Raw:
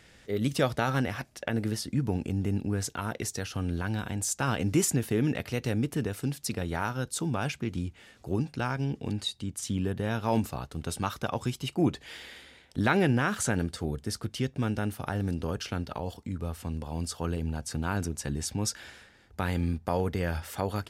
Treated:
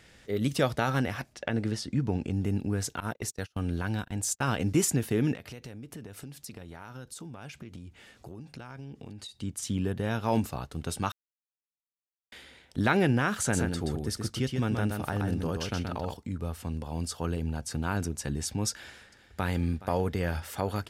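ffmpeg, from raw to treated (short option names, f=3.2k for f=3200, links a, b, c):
-filter_complex "[0:a]asettb=1/sr,asplit=3[a][b][c];[a]atrim=end=1.334[d];[b]atrim=start=1.33:end=2.33,asetpts=PTS-STARTPTS,afade=t=in:d=0.004:c=qsin,afade=t=out:st=0.996:d=0.004:c=qsin,lowpass=7.2k[e];[c]atrim=start=2.326[f];[d][e]acrossfade=d=0.004:c1=hsin:c2=qsin[g];[g][f]acrossfade=d=0.004:c1=qsin:c2=hsin,asettb=1/sr,asplit=3[h][i][j];[h]atrim=end=3.004[k];[i]atrim=start=3:end=4.76,asetpts=PTS-STARTPTS,afade=t=in:d=0.004:c=qsin,afade=t=out:st=1.756:d=0.004:c=qsin,agate=range=-31dB:threshold=-35dB:ratio=16:release=100:detection=peak[l];[j]atrim=start=4.756[m];[k][l]acrossfade=d=0.004:c1=hsin:c2=qsin[n];[n][m]acrossfade=d=0.004:c1=qsin:c2=hsin,asettb=1/sr,asplit=3[o][p][q];[o]atrim=end=5.344[r];[p]atrim=start=5.34:end=9.38,asetpts=PTS-STARTPTS,afade=t=in:d=0.004:c=qsin,afade=t=out:st=4.036:d=0.004:c=qsin,acompressor=threshold=-39dB:ratio=10:attack=3.2:release=140:knee=1:detection=peak[s];[q]atrim=start=9.376[t];[r][s]acrossfade=d=0.004:c1=hsin:c2=qsin[u];[u][t]acrossfade=d=0.004:c1=qsin:c2=hsin,asplit=3[v][w][x];[v]afade=t=out:st=13.52:d=0.02[y];[w]aecho=1:1:127:0.596,afade=t=in:st=13.52:d=0.02,afade=t=out:st=16.13:d=0.02[z];[x]afade=t=in:st=16.13:d=0.02[aa];[y][z][aa]amix=inputs=3:normalize=0,asplit=2[ab][ac];[ac]afade=t=in:st=18.7:d=0.01,afade=t=out:st=19.52:d=0.01,aecho=0:1:420|840|1260|1680|2100|2520|2940|3360:0.141254|0.0988776|0.0692143|0.04845|0.033915|0.0237405|0.0166184|0.0116329[ad];[ab][ad]amix=inputs=2:normalize=0,asplit=3[ae][af][ag];[ae]atrim=end=11.12,asetpts=PTS-STARTPTS,afade=t=out:st=11.116:d=0.004:c=hsin[ah];[af]atrim=start=11.12:end=12.32,asetpts=PTS-STARTPTS,volume=0[ai];[ag]atrim=start=12.32,asetpts=PTS-STARTPTS,afade=t=in:d=0.004:c=hsin[aj];[ah][ai][aj]concat=n=3:v=0:a=1"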